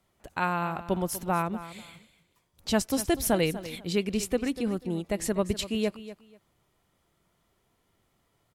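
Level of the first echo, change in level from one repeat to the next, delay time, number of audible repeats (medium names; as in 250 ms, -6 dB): -14.5 dB, -13.5 dB, 244 ms, 2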